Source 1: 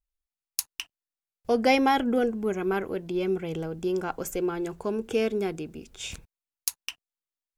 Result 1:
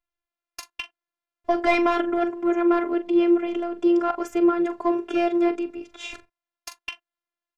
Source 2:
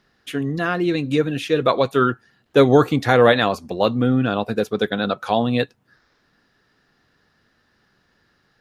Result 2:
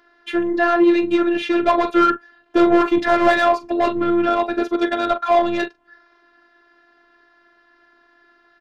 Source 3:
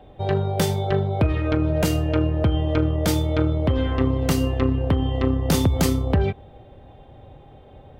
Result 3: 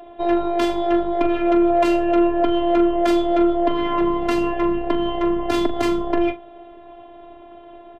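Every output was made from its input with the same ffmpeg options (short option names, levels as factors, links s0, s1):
-filter_complex "[0:a]lowpass=f=3300:p=1,asplit=2[s0][s1];[s1]adelay=42,volume=0.211[s2];[s0][s2]amix=inputs=2:normalize=0,asplit=2[s3][s4];[s4]highpass=f=720:p=1,volume=15.8,asoftclip=type=tanh:threshold=0.944[s5];[s3][s5]amix=inputs=2:normalize=0,lowpass=f=1300:p=1,volume=0.501,afftfilt=real='hypot(re,im)*cos(PI*b)':imag='0':win_size=512:overlap=0.75,volume=0.891"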